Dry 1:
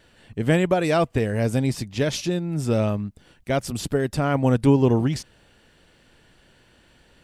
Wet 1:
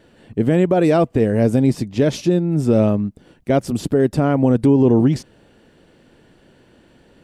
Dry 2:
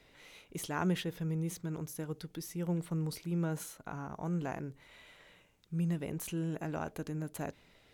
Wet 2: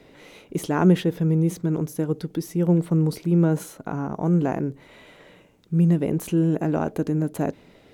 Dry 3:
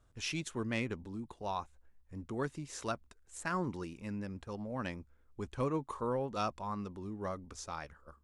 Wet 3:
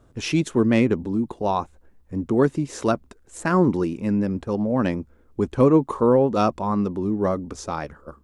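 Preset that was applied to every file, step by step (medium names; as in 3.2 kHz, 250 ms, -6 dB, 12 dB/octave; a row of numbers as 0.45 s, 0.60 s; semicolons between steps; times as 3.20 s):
peaking EQ 300 Hz +12 dB 3 oct; loudness maximiser +3 dB; peak normalisation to -6 dBFS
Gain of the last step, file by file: -5.0 dB, +2.0 dB, +5.0 dB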